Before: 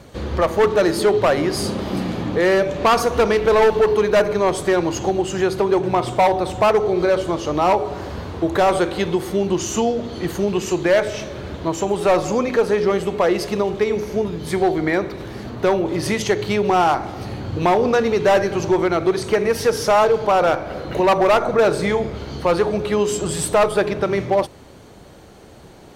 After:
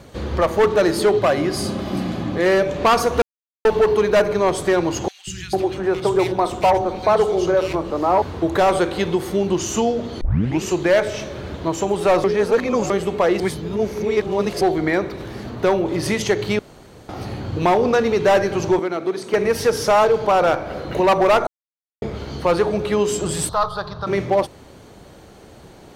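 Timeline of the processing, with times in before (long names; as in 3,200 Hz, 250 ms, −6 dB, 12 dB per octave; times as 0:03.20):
0:01.19–0:02.46: notch comb filter 460 Hz
0:03.22–0:03.65: silence
0:05.08–0:08.22: three-band delay without the direct sound highs, lows, mids 190/450 ms, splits 180/2,000 Hz
0:10.21: tape start 0.41 s
0:12.24–0:12.90: reverse
0:13.40–0:14.61: reverse
0:16.59–0:17.09: fill with room tone
0:18.79–0:19.34: four-pole ladder high-pass 160 Hz, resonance 25%
0:21.47–0:22.02: silence
0:23.49–0:24.07: drawn EQ curve 130 Hz 0 dB, 320 Hz −21 dB, 1,200 Hz +4 dB, 2,300 Hz −22 dB, 4,200 Hz +4 dB, 8,000 Hz −19 dB, 13,000 Hz −11 dB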